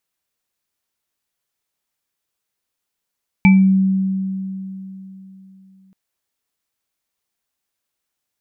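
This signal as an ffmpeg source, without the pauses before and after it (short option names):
-f lavfi -i "aevalsrc='0.501*pow(10,-3*t/3.48)*sin(2*PI*191*t)+0.126*pow(10,-3*t/0.23)*sin(2*PI*870*t)+0.251*pow(10,-3*t/0.31)*sin(2*PI*2320*t)':d=2.48:s=44100"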